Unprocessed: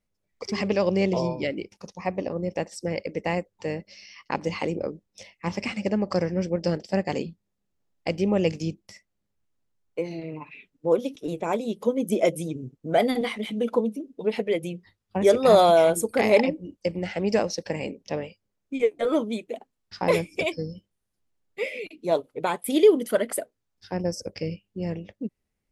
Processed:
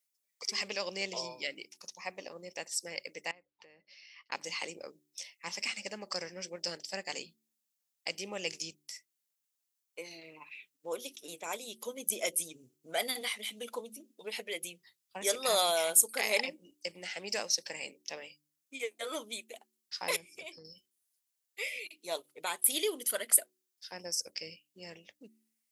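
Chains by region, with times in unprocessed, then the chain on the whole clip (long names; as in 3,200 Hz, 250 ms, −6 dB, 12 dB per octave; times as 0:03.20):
0:03.31–0:04.32: downward compressor 8 to 1, threshold −40 dBFS + high-frequency loss of the air 300 metres
0:20.16–0:20.65: spectral tilt −2.5 dB per octave + downward compressor 10 to 1, threshold −30 dBFS
whole clip: first difference; hum removal 74.22 Hz, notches 5; level +6.5 dB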